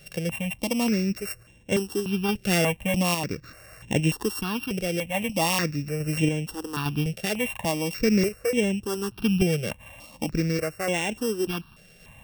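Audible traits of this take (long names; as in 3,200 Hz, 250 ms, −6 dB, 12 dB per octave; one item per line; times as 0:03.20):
a buzz of ramps at a fixed pitch in blocks of 16 samples
sample-and-hold tremolo 3.5 Hz
notches that jump at a steady rate 3.4 Hz 270–4,600 Hz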